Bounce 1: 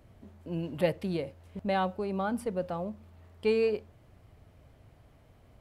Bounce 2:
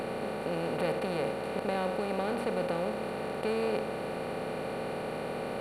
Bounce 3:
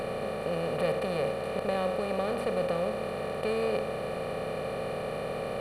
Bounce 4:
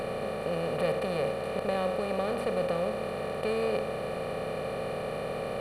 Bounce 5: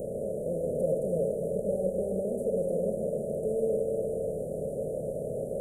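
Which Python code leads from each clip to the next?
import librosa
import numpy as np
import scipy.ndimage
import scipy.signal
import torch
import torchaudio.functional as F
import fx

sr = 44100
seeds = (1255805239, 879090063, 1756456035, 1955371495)

y1 = fx.bin_compress(x, sr, power=0.2)
y1 = y1 * 10.0 ** (-8.5 / 20.0)
y2 = fx.low_shelf(y1, sr, hz=170.0, db=3.0)
y2 = y2 + 0.52 * np.pad(y2, (int(1.7 * sr / 1000.0), 0))[:len(y2)]
y3 = y2
y4 = fx.reverse_delay_fb(y3, sr, ms=148, feedback_pct=74, wet_db=-6)
y4 = scipy.signal.sosfilt(scipy.signal.cheby1(5, 1.0, [630.0, 6700.0], 'bandstop', fs=sr, output='sos'), y4)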